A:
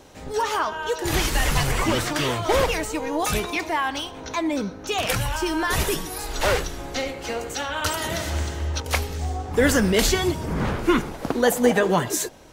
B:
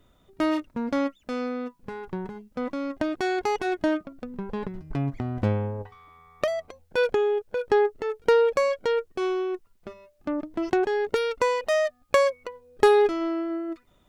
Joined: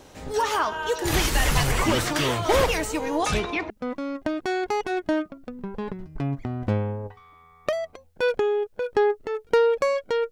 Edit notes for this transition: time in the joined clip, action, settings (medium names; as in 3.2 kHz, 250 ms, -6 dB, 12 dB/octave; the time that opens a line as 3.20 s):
A
3.18–3.70 s: low-pass 9.6 kHz -> 1.8 kHz
3.70 s: go over to B from 2.45 s